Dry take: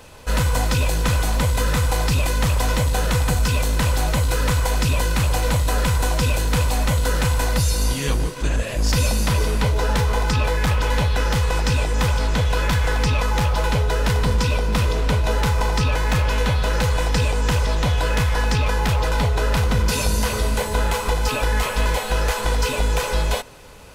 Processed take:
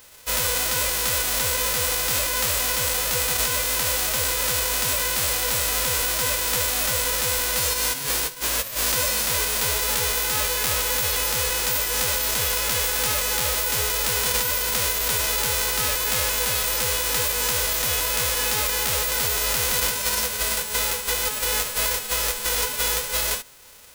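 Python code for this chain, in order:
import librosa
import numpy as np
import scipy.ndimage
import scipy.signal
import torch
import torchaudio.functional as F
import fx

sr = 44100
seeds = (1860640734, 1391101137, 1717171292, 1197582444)

y = fx.envelope_flatten(x, sr, power=0.1)
y = y * 10.0 ** (-5.0 / 20.0)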